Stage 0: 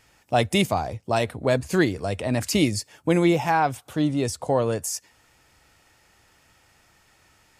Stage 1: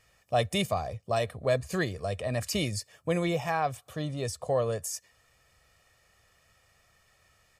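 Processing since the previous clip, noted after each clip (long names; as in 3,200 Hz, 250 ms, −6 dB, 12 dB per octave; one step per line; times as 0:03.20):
comb filter 1.7 ms, depth 61%
level −7.5 dB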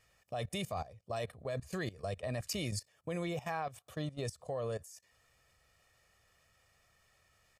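output level in coarse steps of 17 dB
level −2.5 dB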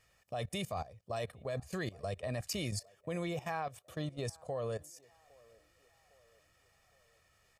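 feedback echo with a band-pass in the loop 808 ms, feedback 52%, band-pass 660 Hz, level −24 dB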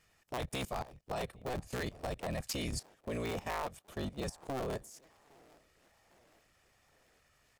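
sub-harmonics by changed cycles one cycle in 3, inverted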